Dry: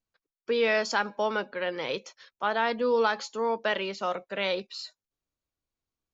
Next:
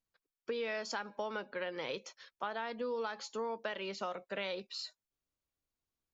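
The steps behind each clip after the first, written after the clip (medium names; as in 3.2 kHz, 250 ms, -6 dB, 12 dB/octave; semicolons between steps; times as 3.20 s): compression, threshold -32 dBFS, peak gain reduction 11.5 dB; trim -3 dB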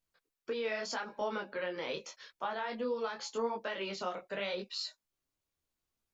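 in parallel at -2.5 dB: peak limiter -33 dBFS, peak gain reduction 9 dB; on the sum: detune thickener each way 29 cents; trim +2 dB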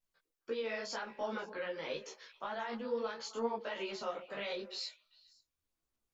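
repeats whose band climbs or falls 133 ms, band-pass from 390 Hz, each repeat 1.4 oct, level -11 dB; chorus voices 6, 1.4 Hz, delay 16 ms, depth 3.2 ms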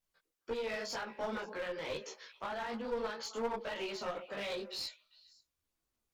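one-sided clip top -39.5 dBFS; trim +2 dB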